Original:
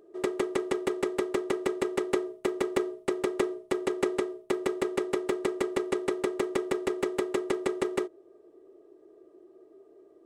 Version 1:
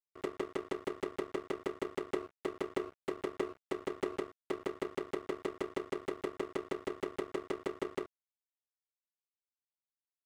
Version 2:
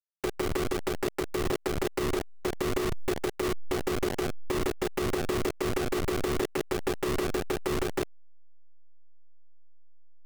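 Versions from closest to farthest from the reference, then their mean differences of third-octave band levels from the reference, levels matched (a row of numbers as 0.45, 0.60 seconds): 1, 2; 4.0, 9.0 decibels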